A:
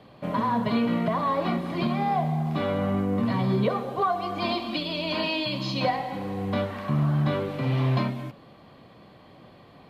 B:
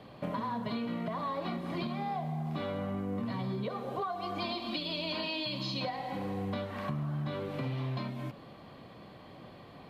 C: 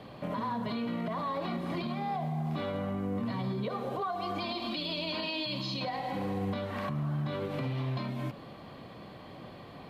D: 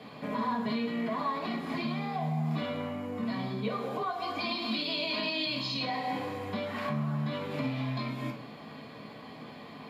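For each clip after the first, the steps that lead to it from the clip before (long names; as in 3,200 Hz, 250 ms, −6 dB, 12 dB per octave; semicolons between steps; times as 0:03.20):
dynamic equaliser 4,000 Hz, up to +5 dB, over −47 dBFS, Q 2.3; downward compressor 6 to 1, threshold −33 dBFS, peak gain reduction 13.5 dB
brickwall limiter −29.5 dBFS, peak gain reduction 7 dB; level +3.5 dB
convolution reverb RT60 0.40 s, pre-delay 3 ms, DRR −0.5 dB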